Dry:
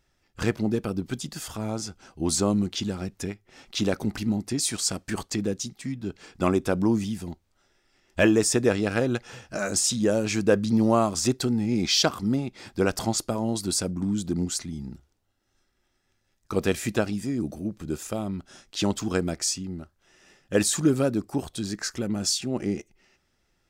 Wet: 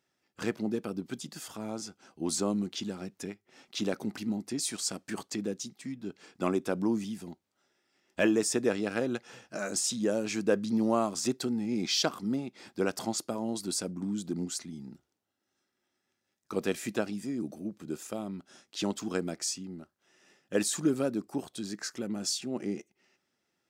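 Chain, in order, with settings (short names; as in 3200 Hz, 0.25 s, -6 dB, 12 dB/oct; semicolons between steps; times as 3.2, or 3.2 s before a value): Chebyshev high-pass 210 Hz, order 2; gain -5.5 dB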